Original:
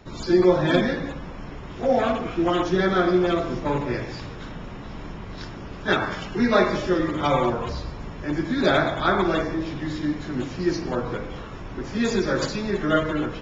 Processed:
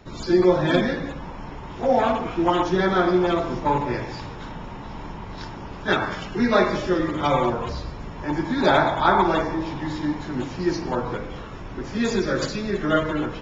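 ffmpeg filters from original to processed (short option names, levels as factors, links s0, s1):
-af "asetnsamples=n=441:p=0,asendcmd='1.18 equalizer g 9.5;5.84 equalizer g 2.5;8.16 equalizer g 14;10.23 equalizer g 8;11.16 equalizer g 2;12.25 equalizer g -5.5;12.85 equalizer g 4.5',equalizer=f=900:t=o:w=0.34:g=1.5"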